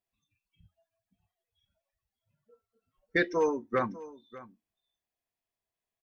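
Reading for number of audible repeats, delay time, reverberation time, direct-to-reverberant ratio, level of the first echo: 1, 596 ms, no reverb, no reverb, -18.0 dB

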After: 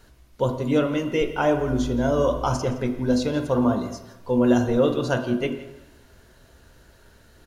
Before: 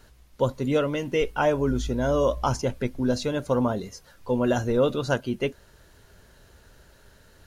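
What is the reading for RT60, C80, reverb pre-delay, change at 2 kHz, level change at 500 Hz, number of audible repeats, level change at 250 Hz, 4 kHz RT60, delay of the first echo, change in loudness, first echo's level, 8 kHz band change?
1.0 s, 10.5 dB, 3 ms, +1.0 dB, +1.5 dB, 1, +5.0 dB, 1.1 s, 168 ms, +2.5 dB, -18.5 dB, 0.0 dB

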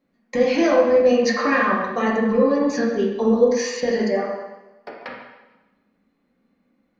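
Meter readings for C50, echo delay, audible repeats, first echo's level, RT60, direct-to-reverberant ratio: 1.0 dB, no echo, no echo, no echo, 1.1 s, -4.0 dB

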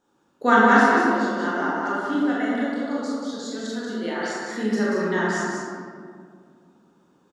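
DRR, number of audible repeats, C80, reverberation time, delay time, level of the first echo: -8.0 dB, 1, -2.0 dB, 2.1 s, 185 ms, -4.0 dB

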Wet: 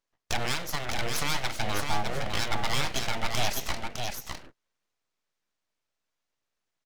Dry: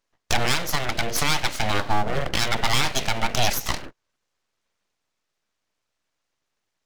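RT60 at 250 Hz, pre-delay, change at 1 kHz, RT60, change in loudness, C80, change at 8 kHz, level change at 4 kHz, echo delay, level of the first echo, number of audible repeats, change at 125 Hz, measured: no reverb, no reverb, -6.5 dB, no reverb, -6.5 dB, no reverb, -6.0 dB, -6.0 dB, 607 ms, -4.5 dB, 1, -6.0 dB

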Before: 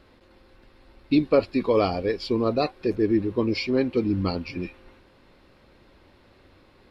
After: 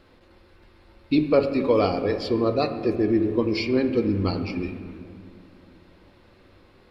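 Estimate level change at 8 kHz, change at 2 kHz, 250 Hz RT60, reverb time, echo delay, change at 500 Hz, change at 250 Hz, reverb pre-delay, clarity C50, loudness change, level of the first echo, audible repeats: no reading, +0.5 dB, 3.0 s, 2.2 s, no echo, +1.5 dB, +1.0 dB, 6 ms, 9.0 dB, +1.0 dB, no echo, no echo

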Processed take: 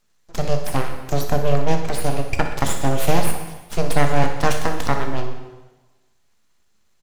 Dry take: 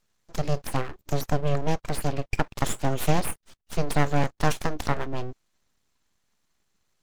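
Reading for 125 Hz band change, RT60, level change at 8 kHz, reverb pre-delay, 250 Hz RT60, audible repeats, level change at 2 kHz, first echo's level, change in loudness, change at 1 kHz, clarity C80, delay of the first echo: +4.0 dB, 1.2 s, +6.0 dB, 4 ms, 1.2 s, 2, +6.0 dB, -12.0 dB, +5.5 dB, +6.0 dB, 8.5 dB, 61 ms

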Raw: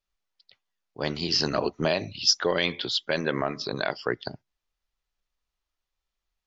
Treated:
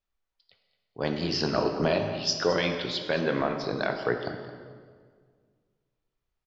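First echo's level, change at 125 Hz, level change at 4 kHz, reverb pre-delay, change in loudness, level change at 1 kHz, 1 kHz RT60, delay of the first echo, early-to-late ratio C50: -15.5 dB, +1.5 dB, -5.5 dB, 3 ms, -1.5 dB, +1.0 dB, 1.7 s, 218 ms, 6.0 dB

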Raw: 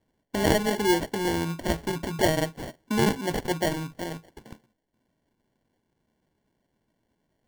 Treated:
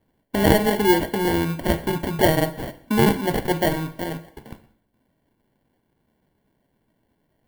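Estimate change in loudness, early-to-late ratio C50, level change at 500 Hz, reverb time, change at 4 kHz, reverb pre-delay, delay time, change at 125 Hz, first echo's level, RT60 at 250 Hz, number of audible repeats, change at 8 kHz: +5.5 dB, 15.0 dB, +5.5 dB, 0.70 s, +2.5 dB, 4 ms, no echo, +6.0 dB, no echo, 0.75 s, no echo, +1.5 dB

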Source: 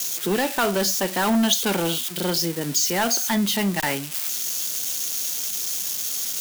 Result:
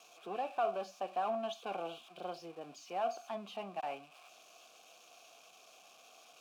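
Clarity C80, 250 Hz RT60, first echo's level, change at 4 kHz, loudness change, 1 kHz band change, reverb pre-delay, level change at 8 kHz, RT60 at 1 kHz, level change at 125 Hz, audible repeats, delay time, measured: no reverb, no reverb, no echo, -26.5 dB, -18.0 dB, -9.5 dB, no reverb, -36.5 dB, no reverb, -29.0 dB, no echo, no echo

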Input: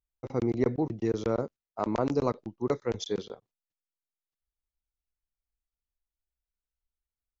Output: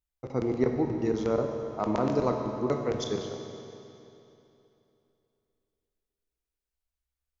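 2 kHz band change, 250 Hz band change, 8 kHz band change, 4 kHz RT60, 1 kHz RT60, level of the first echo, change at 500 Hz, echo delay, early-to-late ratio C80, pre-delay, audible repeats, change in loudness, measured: +1.5 dB, +1.5 dB, no reading, 2.7 s, 3.0 s, no echo, +2.0 dB, no echo, 5.0 dB, 13 ms, no echo, +1.5 dB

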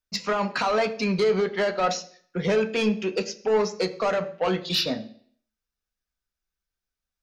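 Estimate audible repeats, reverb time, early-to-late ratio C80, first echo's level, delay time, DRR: no echo, 0.55 s, 17.5 dB, no echo, no echo, 6.0 dB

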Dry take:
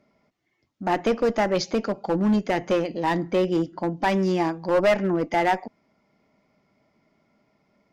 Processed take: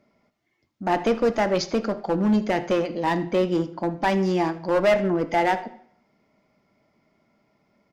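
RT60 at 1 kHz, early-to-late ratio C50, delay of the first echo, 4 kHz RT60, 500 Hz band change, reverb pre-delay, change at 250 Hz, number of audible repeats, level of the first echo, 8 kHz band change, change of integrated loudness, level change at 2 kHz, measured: 0.60 s, 14.0 dB, 80 ms, 0.60 s, +0.5 dB, 5 ms, +0.5 dB, 1, -19.0 dB, no reading, +0.5 dB, +0.5 dB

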